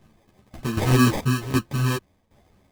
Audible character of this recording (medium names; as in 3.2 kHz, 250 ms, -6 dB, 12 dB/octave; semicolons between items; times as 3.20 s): phasing stages 2, 3.2 Hz, lowest notch 340–1200 Hz; tremolo saw down 1.3 Hz, depth 80%; aliases and images of a low sample rate 1.4 kHz, jitter 0%; a shimmering, thickened sound